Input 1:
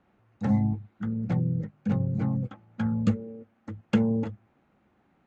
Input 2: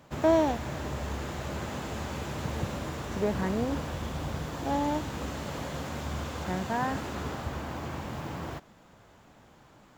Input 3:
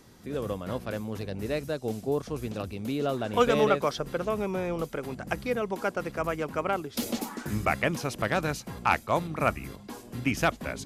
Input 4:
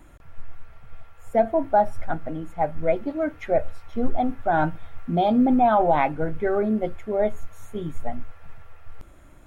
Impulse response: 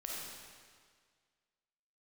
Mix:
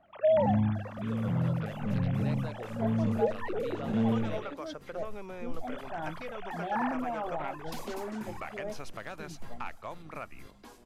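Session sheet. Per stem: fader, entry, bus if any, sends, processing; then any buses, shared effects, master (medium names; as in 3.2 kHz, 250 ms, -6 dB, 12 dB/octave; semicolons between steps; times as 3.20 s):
-3.5 dB, 0.00 s, no send, spectral blur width 184 ms
-5.0 dB, 0.00 s, muted 4.54–5.67 s, no send, formants replaced by sine waves
-12.5 dB, 0.75 s, no send, compression 5:1, threshold -27 dBFS, peak gain reduction 10.5 dB; overdrive pedal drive 10 dB, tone 5.7 kHz, clips at -13 dBFS
-17.5 dB, 1.45 s, no send, none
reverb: none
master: bass shelf 250 Hz +3.5 dB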